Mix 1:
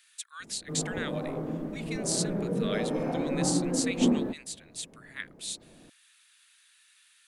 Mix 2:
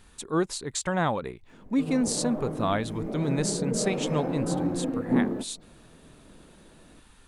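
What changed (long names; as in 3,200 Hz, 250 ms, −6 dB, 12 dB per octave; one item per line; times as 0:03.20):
speech: remove inverse Chebyshev high-pass filter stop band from 380 Hz, stop band 70 dB
background: entry +1.10 s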